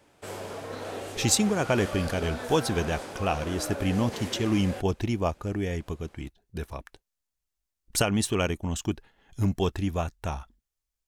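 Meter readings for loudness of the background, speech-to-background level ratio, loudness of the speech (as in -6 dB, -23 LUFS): -37.0 LUFS, 9.0 dB, -28.0 LUFS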